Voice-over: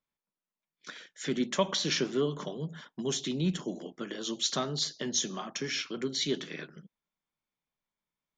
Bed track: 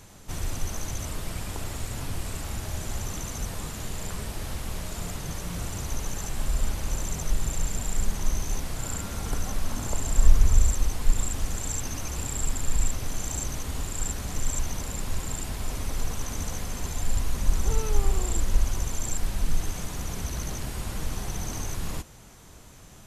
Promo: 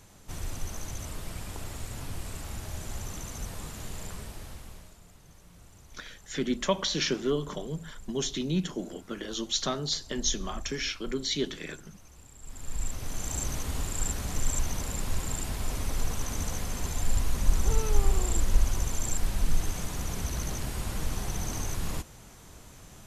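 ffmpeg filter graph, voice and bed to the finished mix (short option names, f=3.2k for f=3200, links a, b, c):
-filter_complex "[0:a]adelay=5100,volume=1dB[a];[1:a]volume=15.5dB,afade=t=out:st=3.99:d=1:silence=0.158489,afade=t=in:st=12.41:d=1.09:silence=0.0944061[b];[a][b]amix=inputs=2:normalize=0"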